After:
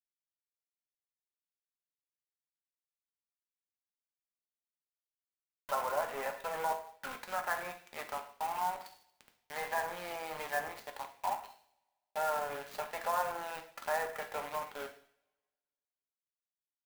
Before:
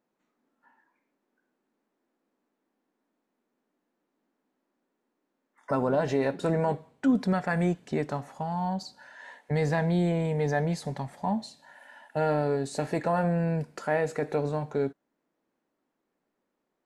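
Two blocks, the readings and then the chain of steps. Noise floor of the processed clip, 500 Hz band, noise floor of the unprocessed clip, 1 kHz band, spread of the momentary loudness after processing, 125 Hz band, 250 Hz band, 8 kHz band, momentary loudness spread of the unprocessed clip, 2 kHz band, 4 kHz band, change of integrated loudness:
under -85 dBFS, -11.0 dB, -81 dBFS, -2.5 dB, 11 LU, -31.5 dB, -27.5 dB, -0.5 dB, 8 LU, -3.0 dB, -3.0 dB, -9.0 dB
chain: high-pass 620 Hz 24 dB/octave; word length cut 6-bit, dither none; two-slope reverb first 0.56 s, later 1.6 s, from -25 dB, DRR 3.5 dB; dynamic bell 1.1 kHz, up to +6 dB, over -45 dBFS, Q 1.6; low-pass that closes with the level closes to 2.2 kHz, closed at -25.5 dBFS; peaking EQ 2.5 kHz +2.5 dB; sampling jitter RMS 0.029 ms; trim -7 dB

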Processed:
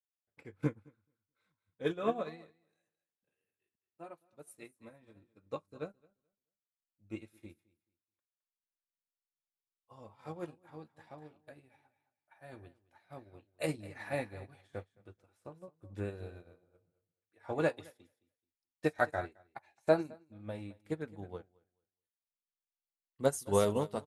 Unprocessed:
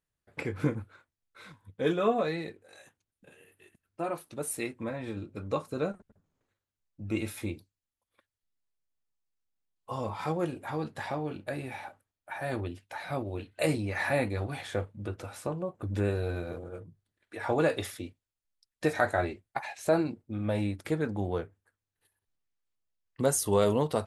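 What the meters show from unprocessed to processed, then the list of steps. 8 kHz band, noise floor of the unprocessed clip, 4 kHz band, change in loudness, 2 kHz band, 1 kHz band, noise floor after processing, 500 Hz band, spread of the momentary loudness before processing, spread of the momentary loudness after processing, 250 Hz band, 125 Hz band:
-11.0 dB, under -85 dBFS, -9.0 dB, -4.5 dB, -8.0 dB, -7.5 dB, under -85 dBFS, -6.0 dB, 14 LU, 23 LU, -8.5 dB, -10.0 dB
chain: feedback delay 216 ms, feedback 22%, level -11 dB; upward expansion 2.5:1, over -41 dBFS

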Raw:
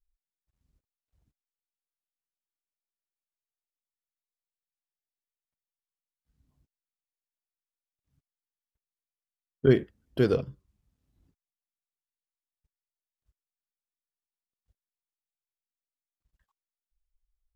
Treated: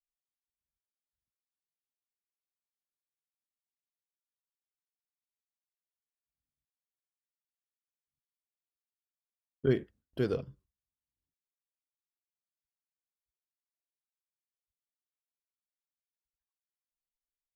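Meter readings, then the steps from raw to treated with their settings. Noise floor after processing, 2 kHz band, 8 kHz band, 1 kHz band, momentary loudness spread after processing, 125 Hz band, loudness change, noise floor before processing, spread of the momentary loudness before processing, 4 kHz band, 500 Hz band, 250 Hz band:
under -85 dBFS, -7.0 dB, no reading, -7.0 dB, 15 LU, -7.0 dB, -7.0 dB, under -85 dBFS, 15 LU, -7.0 dB, -7.0 dB, -7.0 dB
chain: gate with hold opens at -57 dBFS; trim -7 dB

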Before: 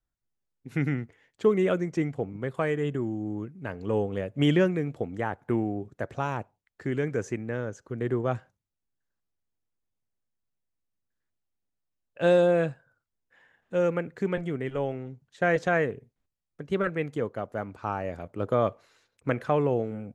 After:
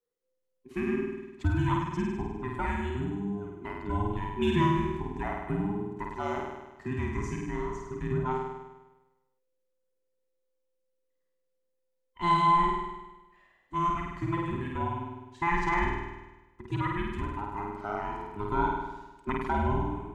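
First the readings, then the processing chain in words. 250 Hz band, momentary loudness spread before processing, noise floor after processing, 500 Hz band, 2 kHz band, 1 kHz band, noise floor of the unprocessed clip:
-2.5 dB, 12 LU, -78 dBFS, -9.0 dB, -2.5 dB, +6.0 dB, -83 dBFS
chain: every band turned upside down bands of 500 Hz; flutter echo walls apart 8.7 m, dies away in 1.1 s; endings held to a fixed fall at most 150 dB/s; trim -5 dB

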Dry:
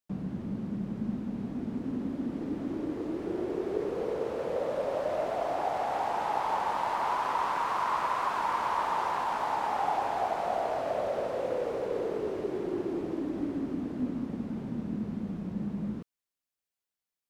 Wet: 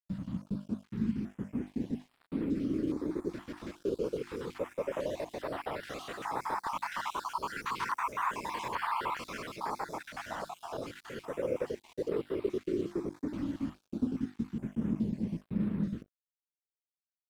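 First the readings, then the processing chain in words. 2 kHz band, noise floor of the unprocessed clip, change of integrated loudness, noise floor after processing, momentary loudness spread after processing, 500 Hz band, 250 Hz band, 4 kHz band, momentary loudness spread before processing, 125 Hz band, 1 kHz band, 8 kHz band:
-2.0 dB, under -85 dBFS, -4.0 dB, under -85 dBFS, 8 LU, -5.0 dB, -1.0 dB, -1.5 dB, 6 LU, 0.0 dB, -7.5 dB, +0.5 dB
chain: random holes in the spectrogram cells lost 48%; peaking EQ 740 Hz -14.5 dB 0.66 oct; hum notches 50/100/150/200/250/300/350 Hz; crossover distortion -55.5 dBFS; step-sequenced notch 2.4 Hz 410–6300 Hz; trim +5 dB

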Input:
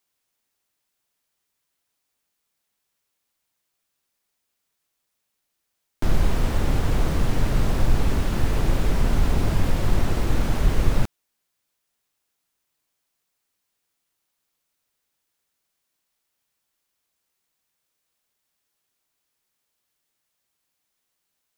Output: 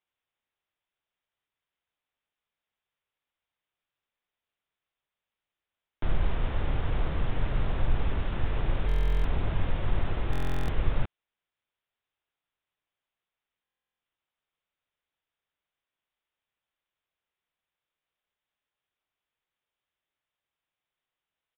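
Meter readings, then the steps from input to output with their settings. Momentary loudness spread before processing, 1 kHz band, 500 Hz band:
2 LU, -6.5 dB, -7.5 dB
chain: peaking EQ 240 Hz -5.5 dB 1.3 oct; resampled via 8 kHz; buffer glitch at 8.87/10.31/13.63 s, samples 1024, times 15; trim -6 dB

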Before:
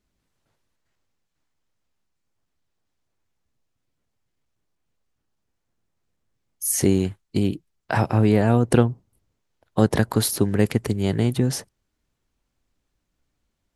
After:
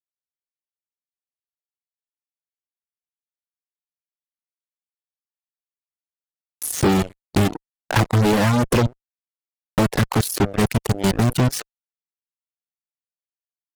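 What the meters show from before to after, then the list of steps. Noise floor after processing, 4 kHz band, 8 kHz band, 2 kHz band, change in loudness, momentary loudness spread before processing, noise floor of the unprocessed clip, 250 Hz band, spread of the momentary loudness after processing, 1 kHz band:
under -85 dBFS, +4.5 dB, -0.5 dB, +5.5 dB, +1.0 dB, 9 LU, -77 dBFS, +0.5 dB, 8 LU, +5.0 dB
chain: level held to a coarse grid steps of 21 dB; fuzz box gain 40 dB, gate -40 dBFS; reverb removal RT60 0.6 s

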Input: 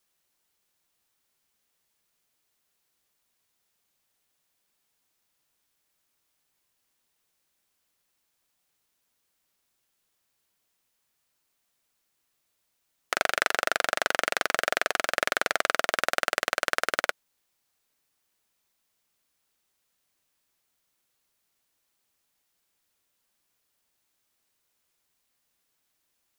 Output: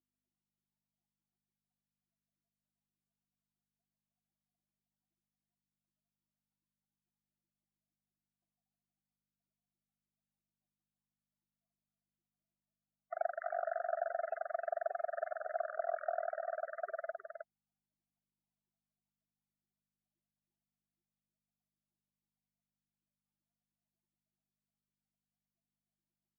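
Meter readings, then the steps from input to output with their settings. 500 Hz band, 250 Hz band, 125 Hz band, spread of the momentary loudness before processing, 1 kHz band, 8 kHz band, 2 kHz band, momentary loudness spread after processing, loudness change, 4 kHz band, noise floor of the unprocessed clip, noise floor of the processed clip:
-5.0 dB, under -35 dB, under -30 dB, 2 LU, -10.0 dB, under -40 dB, -21.5 dB, 9 LU, -13.0 dB, under -40 dB, -77 dBFS, under -85 dBFS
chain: loudest bins only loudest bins 32; hum 50 Hz, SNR 35 dB; two resonant band-passes 480 Hz, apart 1 oct; on a send: delay 314 ms -6 dB

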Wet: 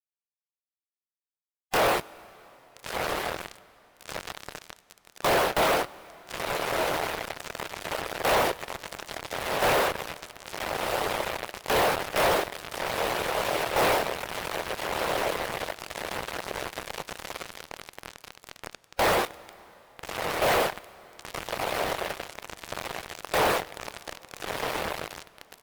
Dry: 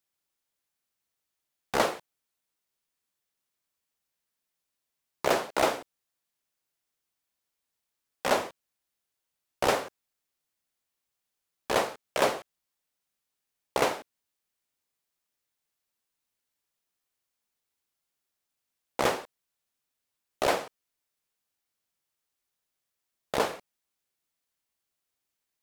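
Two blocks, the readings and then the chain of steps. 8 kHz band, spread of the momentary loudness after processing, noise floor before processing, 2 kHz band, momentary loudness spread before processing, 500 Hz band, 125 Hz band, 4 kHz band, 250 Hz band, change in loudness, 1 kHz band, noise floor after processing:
+6.0 dB, 18 LU, -85 dBFS, +8.0 dB, 13 LU, +5.0 dB, +9.0 dB, +7.5 dB, +4.5 dB, +1.0 dB, +6.5 dB, under -85 dBFS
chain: compression 12:1, threshold -25 dBFS, peak gain reduction 7.5 dB; hum notches 50/100/150/200/250/300/350/400/450/500 Hz; doubling 25 ms -3 dB; echo that smears into a reverb 1354 ms, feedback 73%, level -11 dB; fuzz box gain 44 dB, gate -43 dBFS; dynamic bell 6.8 kHz, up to -7 dB, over -38 dBFS, Q 0.88; harmonic-percussive split harmonic -10 dB; peak limiter -18 dBFS, peak gain reduction 6 dB; peaking EQ 250 Hz -5.5 dB 0.4 oct; plate-style reverb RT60 4.1 s, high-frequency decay 0.85×, DRR 20 dB

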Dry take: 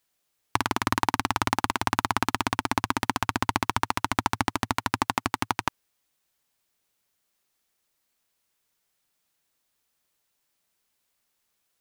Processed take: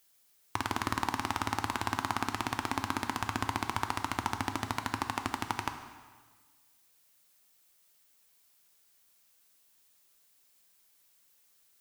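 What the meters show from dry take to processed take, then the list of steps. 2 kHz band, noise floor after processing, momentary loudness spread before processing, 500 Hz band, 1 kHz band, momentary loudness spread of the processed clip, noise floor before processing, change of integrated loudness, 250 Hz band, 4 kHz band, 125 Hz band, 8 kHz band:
-7.0 dB, -67 dBFS, 3 LU, -7.0 dB, -7.0 dB, 3 LU, -76 dBFS, -7.0 dB, -6.5 dB, -7.0 dB, -5.5 dB, -7.0 dB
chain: peak limiter -11.5 dBFS, peak gain reduction 9 dB; added noise blue -68 dBFS; plate-style reverb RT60 1.5 s, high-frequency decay 0.9×, DRR 7 dB

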